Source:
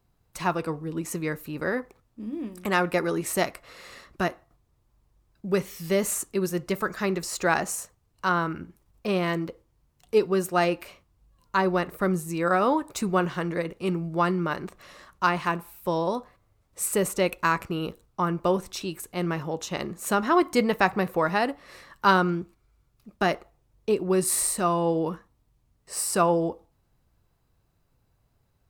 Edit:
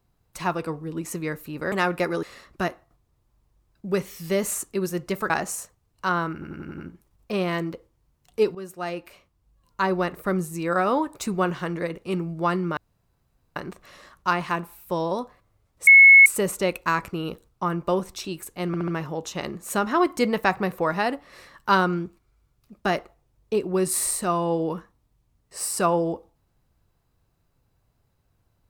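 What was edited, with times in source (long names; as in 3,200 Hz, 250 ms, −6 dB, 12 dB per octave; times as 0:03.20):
0:01.72–0:02.66: remove
0:03.17–0:03.83: remove
0:06.90–0:07.50: remove
0:08.53: stutter 0.09 s, 6 plays
0:10.30–0:11.63: fade in, from −14 dB
0:14.52: splice in room tone 0.79 s
0:16.83: insert tone 2,190 Hz −7 dBFS 0.39 s
0:19.24: stutter 0.07 s, 4 plays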